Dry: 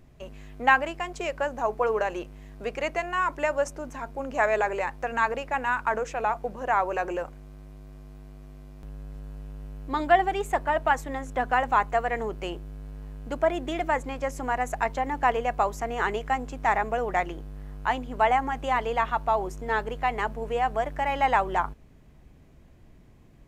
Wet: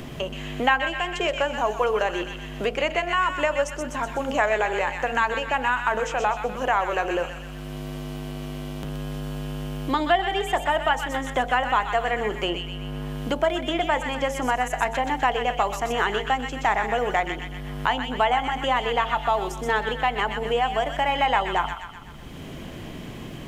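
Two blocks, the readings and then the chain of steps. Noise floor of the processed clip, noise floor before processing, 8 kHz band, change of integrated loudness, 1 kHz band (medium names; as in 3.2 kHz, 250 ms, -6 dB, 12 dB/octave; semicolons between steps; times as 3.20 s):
-37 dBFS, -53 dBFS, +5.5 dB, +2.0 dB, +2.0 dB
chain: peaking EQ 3.1 kHz +10.5 dB 0.27 oct; de-hum 45.38 Hz, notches 20; on a send: feedback echo behind a high-pass 125 ms, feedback 40%, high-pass 1.6 kHz, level -5 dB; on the sum: three bands compressed up and down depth 70%; trim +2.5 dB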